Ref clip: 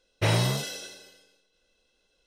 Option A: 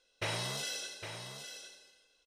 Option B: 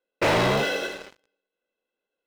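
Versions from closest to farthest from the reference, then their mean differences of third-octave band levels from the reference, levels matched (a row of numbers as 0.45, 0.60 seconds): B, A; 6.5, 9.5 decibels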